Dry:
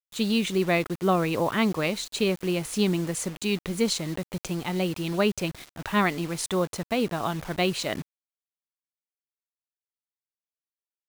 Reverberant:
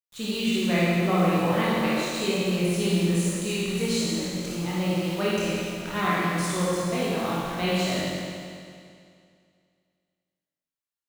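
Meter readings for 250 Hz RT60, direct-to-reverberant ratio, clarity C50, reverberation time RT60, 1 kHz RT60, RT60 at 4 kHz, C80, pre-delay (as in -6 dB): 2.3 s, -9.0 dB, -5.0 dB, 2.3 s, 2.3 s, 2.2 s, -2.0 dB, 22 ms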